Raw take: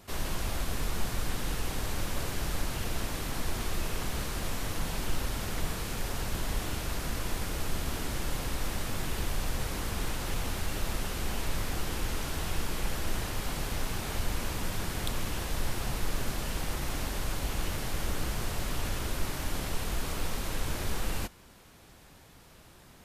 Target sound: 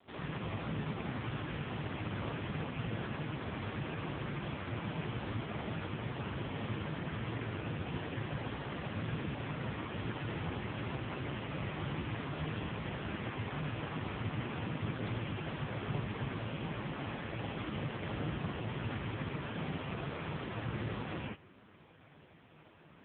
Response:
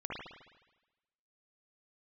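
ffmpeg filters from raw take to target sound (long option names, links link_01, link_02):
-filter_complex "[0:a]adynamicequalizer=threshold=0.002:dfrequency=130:dqfactor=2.5:tfrequency=130:tqfactor=2.5:attack=5:release=100:ratio=0.375:range=3:mode=boostabove:tftype=bell[link_01];[1:a]atrim=start_sample=2205,atrim=end_sample=3969[link_02];[link_01][link_02]afir=irnorm=-1:irlink=0,volume=1dB" -ar 8000 -c:a libopencore_amrnb -b:a 5150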